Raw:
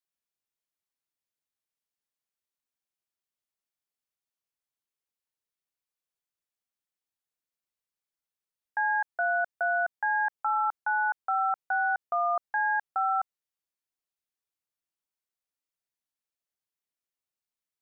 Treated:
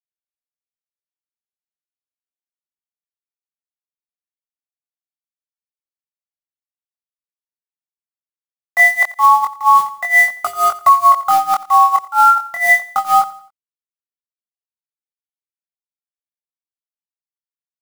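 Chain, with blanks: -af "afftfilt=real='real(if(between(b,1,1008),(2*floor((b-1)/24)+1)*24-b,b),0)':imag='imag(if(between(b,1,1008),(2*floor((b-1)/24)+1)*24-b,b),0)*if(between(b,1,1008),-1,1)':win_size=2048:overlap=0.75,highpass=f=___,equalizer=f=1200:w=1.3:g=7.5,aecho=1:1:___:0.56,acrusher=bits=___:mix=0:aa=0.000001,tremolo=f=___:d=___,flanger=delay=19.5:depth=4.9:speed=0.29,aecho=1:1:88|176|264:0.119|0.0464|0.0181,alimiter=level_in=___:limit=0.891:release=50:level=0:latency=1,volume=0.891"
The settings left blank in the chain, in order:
630, 3.6, 5, 4.4, 0.9, 8.41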